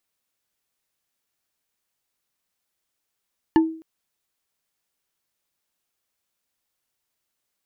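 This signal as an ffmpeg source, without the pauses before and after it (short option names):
-f lavfi -i "aevalsrc='0.316*pow(10,-3*t/0.46)*sin(2*PI*322*t)+0.15*pow(10,-3*t/0.136)*sin(2*PI*887.8*t)+0.0708*pow(10,-3*t/0.061)*sin(2*PI*1740.1*t)+0.0335*pow(10,-3*t/0.033)*sin(2*PI*2876.4*t)+0.0158*pow(10,-3*t/0.021)*sin(2*PI*4295.5*t)':d=0.26:s=44100"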